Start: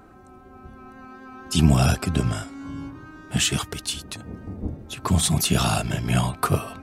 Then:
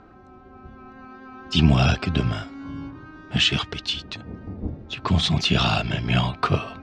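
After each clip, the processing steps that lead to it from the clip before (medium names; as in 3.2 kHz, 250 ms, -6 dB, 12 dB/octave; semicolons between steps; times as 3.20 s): low-pass 5 kHz 24 dB/octave; dynamic bell 3 kHz, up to +6 dB, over -41 dBFS, Q 1.1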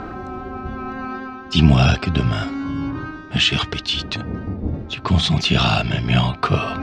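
harmonic-percussive split percussive -3 dB; reverse; upward compressor, threshold -22 dBFS; reverse; trim +5 dB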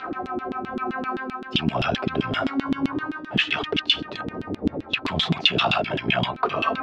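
peak limiter -11 dBFS, peak gain reduction 9 dB; LFO band-pass saw down 7.7 Hz 240–3500 Hz; trim +8.5 dB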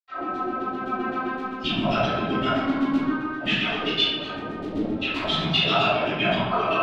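reverberation RT60 1.2 s, pre-delay 78 ms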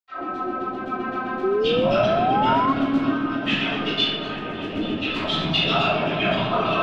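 delay with an opening low-pass 278 ms, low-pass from 750 Hz, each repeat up 1 oct, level -6 dB; painted sound rise, 1.43–2.73 s, 370–1100 Hz -21 dBFS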